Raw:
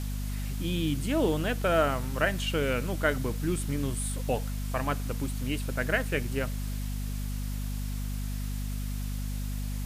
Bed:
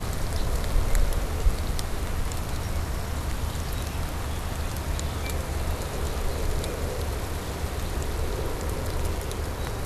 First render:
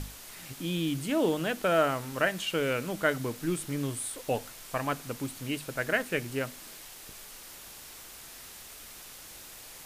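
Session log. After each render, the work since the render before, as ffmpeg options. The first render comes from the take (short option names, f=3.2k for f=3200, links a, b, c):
-af "bandreject=f=50:t=h:w=6,bandreject=f=100:t=h:w=6,bandreject=f=150:t=h:w=6,bandreject=f=200:t=h:w=6,bandreject=f=250:t=h:w=6"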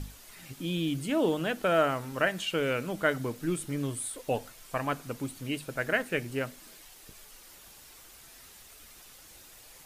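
-af "afftdn=nr=7:nf=-48"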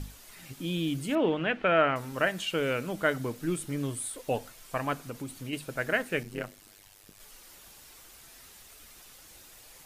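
-filter_complex "[0:a]asettb=1/sr,asplit=3[a][b][c];[a]atrim=end=1.154[d];[b]atrim=start=1.15:end=1.96,asetpts=PTS-STARTPTS,afade=t=in:d=0.004:c=qsin,afade=t=out:st=0.806:d=0.004:c=qsin,lowpass=f=2.4k:t=q:w=2.1[e];[c]atrim=start=1.956[f];[d][e]acrossfade=d=0.004:c1=hsin:c2=qsin[g];[g][f]acrossfade=d=0.004:c1=qsin:c2=hsin,asettb=1/sr,asplit=3[h][i][j];[h]atrim=end=4.994[k];[i]atrim=start=4.99:end=5.53,asetpts=PTS-STARTPTS,afade=t=in:d=0.004:c=qsin,afade=t=out:st=0.536:d=0.004:c=qsin,acompressor=threshold=-34dB:ratio=2.5:attack=3.2:release=140:knee=1:detection=peak[l];[j]atrim=start=5.526[m];[k][l]acrossfade=d=0.004:c1=hsin:c2=qsin[n];[n][m]acrossfade=d=0.004:c1=qsin:c2=hsin,asettb=1/sr,asplit=3[o][p][q];[o]atrim=end=6.234[r];[p]atrim=start=6.23:end=7.2,asetpts=PTS-STARTPTS,afade=t=in:d=0.004:c=qsin,afade=t=out:st=0.966:d=0.004:c=qsin,tremolo=f=100:d=0.947[s];[q]atrim=start=7.196[t];[r][s]acrossfade=d=0.004:c1=hsin:c2=qsin[u];[u][t]acrossfade=d=0.004:c1=qsin:c2=hsin"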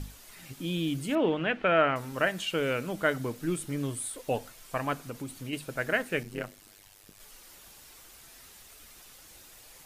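-af anull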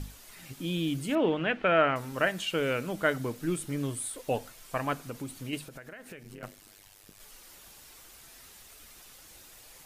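-filter_complex "[0:a]asettb=1/sr,asplit=3[a][b][c];[a]atrim=end=5.654[d];[b]atrim=start=5.65:end=6.43,asetpts=PTS-STARTPTS,afade=t=in:d=0.004:c=qsin,afade=t=out:st=0.776:d=0.004:c=qsin,acompressor=threshold=-41dB:ratio=16:attack=3.2:release=140:knee=1:detection=peak[e];[c]atrim=start=6.426[f];[d][e]acrossfade=d=0.004:c1=hsin:c2=qsin[g];[g][f]acrossfade=d=0.004:c1=qsin:c2=hsin"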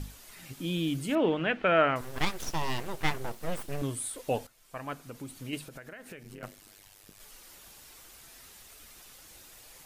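-filter_complex "[0:a]asettb=1/sr,asplit=3[a][b][c];[a]atrim=end=2.014[d];[b]atrim=start=2.01:end=3.82,asetpts=PTS-STARTPTS,afade=t=in:d=0.004:c=qsin,afade=t=out:st=1.806:d=0.004:c=qsin,aeval=exprs='abs(val(0))':c=same[e];[c]atrim=start=3.816[f];[d][e]acrossfade=d=0.004:c1=hsin:c2=qsin[g];[g][f]acrossfade=d=0.004:c1=qsin:c2=hsin,asplit=2[h][i];[h]atrim=end=4.47,asetpts=PTS-STARTPTS,afade=t=out:st=4.466:d=0.004:c=hsin:silence=0.177828[j];[i]atrim=start=4.47,asetpts=PTS-STARTPTS,afade=t=in:d=1.26:silence=0.177828[k];[j][k]concat=n=2:v=0:a=1"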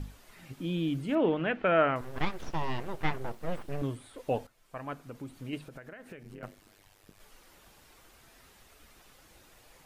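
-filter_complex "[0:a]acrossover=split=4700[a][b];[b]acompressor=threshold=-49dB:ratio=4:attack=1:release=60[c];[a][c]amix=inputs=2:normalize=0,highshelf=f=3k:g=-10.5"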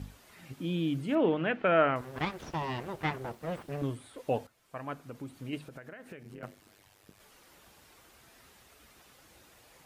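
-af "highpass=59"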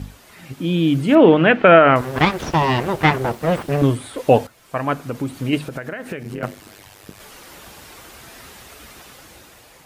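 -af "dynaudnorm=f=270:g=7:m=7dB,alimiter=level_in=10.5dB:limit=-1dB:release=50:level=0:latency=1"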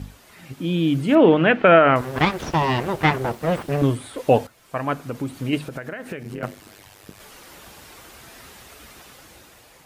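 -af "volume=-3dB"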